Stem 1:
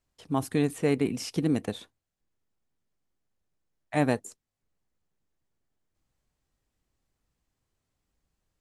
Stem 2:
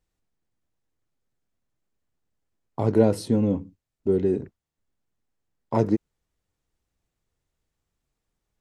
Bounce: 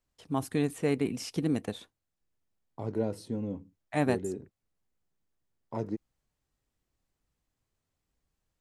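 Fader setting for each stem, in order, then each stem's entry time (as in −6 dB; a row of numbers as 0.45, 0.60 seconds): −3.0, −12.5 decibels; 0.00, 0.00 seconds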